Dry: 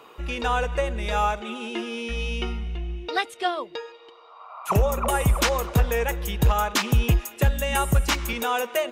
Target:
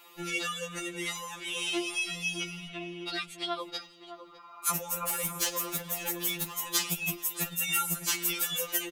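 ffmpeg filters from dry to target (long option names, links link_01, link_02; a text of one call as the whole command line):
ffmpeg -i in.wav -filter_complex "[0:a]agate=range=-9dB:threshold=-36dB:ratio=16:detection=peak,asettb=1/sr,asplit=3[link_01][link_02][link_03];[link_01]atrim=end=2.684[link_04];[link_02]atrim=start=2.68:end=3.6,asetpts=PTS-STARTPTS,afade=type=in:duration=0.004:curve=qsin,afade=type=out:start_time=0.916:duration=0.004:curve=qsin,acrossover=split=380 4500:gain=0.224 1 0.178[link_05][link_06][link_07];[link_05][link_06][link_07]amix=inputs=3:normalize=0[link_08];[link_03]atrim=start=3.596[link_09];[link_04][link_08]acrossfade=duration=0.004:curve1=hsin:curve2=qsin[link_10];[link_10][link_09]acrossfade=duration=0.004:curve1=qsin:curve2=hsin,acompressor=threshold=-32dB:ratio=6,asettb=1/sr,asplit=3[link_11][link_12][link_13];[link_11]atrim=end=5.074[link_14];[link_12]atrim=start=5.07:end=6.57,asetpts=PTS-STARTPTS,afade=type=in:duration=0.004:curve=qsin,afade=type=out:start_time=1.496:duration=0.004:curve=qsin,volume=31dB,asoftclip=hard,volume=-31dB[link_15];[link_13]atrim=start=6.566[link_16];[link_14][link_15]acrossfade=duration=0.004:curve1=hsin:curve2=qsin[link_17];[link_17][link_16]acrossfade=duration=0.004:curve1=qsin:curve2=hsin,crystalizer=i=7:c=0,asoftclip=type=tanh:threshold=-16dB,asplit=2[link_18][link_19];[link_19]adelay=606,lowpass=frequency=810:poles=1,volume=-8.5dB,asplit=2[link_20][link_21];[link_21]adelay=606,lowpass=frequency=810:poles=1,volume=0.26,asplit=2[link_22][link_23];[link_23]adelay=606,lowpass=frequency=810:poles=1,volume=0.26[link_24];[link_20][link_22][link_24]amix=inputs=3:normalize=0[link_25];[link_18][link_25]amix=inputs=2:normalize=0,afftfilt=real='re*2.83*eq(mod(b,8),0)':imag='im*2.83*eq(mod(b,8),0)':win_size=2048:overlap=0.75" out.wav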